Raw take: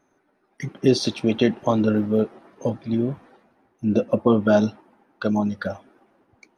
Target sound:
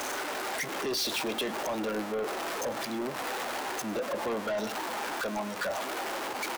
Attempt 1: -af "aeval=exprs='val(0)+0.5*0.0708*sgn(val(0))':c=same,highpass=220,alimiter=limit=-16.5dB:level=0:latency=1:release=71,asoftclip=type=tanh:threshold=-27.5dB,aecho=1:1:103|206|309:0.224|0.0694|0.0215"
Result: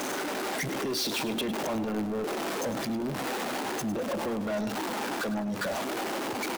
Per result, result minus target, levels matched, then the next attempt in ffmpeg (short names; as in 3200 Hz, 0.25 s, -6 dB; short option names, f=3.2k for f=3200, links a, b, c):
echo-to-direct +7.5 dB; 250 Hz band +4.5 dB
-af "aeval=exprs='val(0)+0.5*0.0708*sgn(val(0))':c=same,highpass=220,alimiter=limit=-16.5dB:level=0:latency=1:release=71,asoftclip=type=tanh:threshold=-27.5dB,aecho=1:1:103|206:0.0944|0.0293"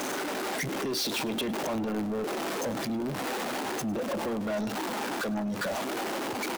250 Hz band +4.5 dB
-af "aeval=exprs='val(0)+0.5*0.0708*sgn(val(0))':c=same,highpass=530,alimiter=limit=-16.5dB:level=0:latency=1:release=71,asoftclip=type=tanh:threshold=-27.5dB,aecho=1:1:103|206:0.0944|0.0293"